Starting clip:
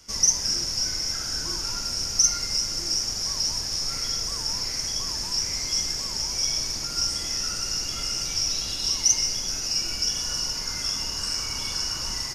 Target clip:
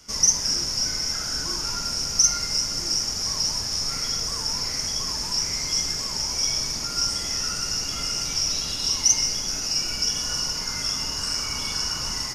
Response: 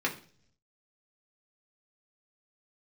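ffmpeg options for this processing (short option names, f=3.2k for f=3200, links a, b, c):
-filter_complex "[0:a]asplit=2[a][b];[1:a]atrim=start_sample=2205,asetrate=24255,aresample=44100[c];[b][c]afir=irnorm=-1:irlink=0,volume=-16.5dB[d];[a][d]amix=inputs=2:normalize=0"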